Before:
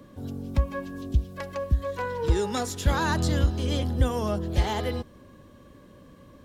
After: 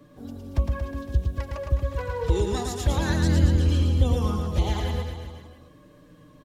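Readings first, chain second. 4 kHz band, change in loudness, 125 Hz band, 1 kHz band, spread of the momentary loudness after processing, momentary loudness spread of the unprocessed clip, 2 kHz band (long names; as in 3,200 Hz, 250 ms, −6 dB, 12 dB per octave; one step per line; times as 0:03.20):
−0.5 dB, +2.5 dB, +4.0 dB, −3.0 dB, 12 LU, 10 LU, −2.0 dB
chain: flanger swept by the level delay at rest 7.5 ms, full sweep at −19 dBFS
reverse bouncing-ball delay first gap 110 ms, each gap 1.1×, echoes 5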